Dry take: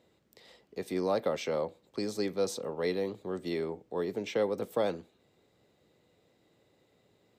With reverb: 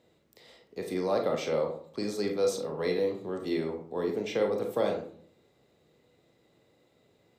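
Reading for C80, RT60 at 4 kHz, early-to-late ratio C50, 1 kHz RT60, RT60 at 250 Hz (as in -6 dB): 12.0 dB, 0.30 s, 7.0 dB, 0.50 s, 0.70 s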